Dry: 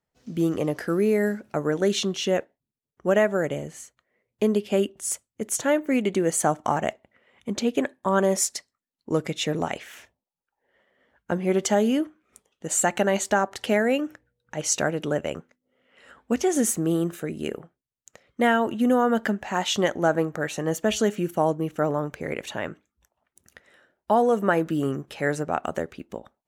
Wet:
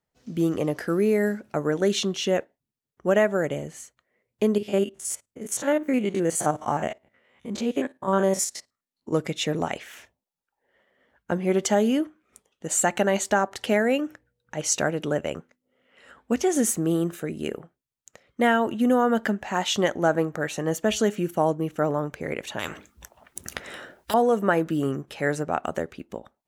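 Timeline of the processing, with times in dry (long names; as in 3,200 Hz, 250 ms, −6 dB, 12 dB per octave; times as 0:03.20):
0:04.58–0:09.13: spectrum averaged block by block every 50 ms
0:22.59–0:24.14: every bin compressed towards the loudest bin 4 to 1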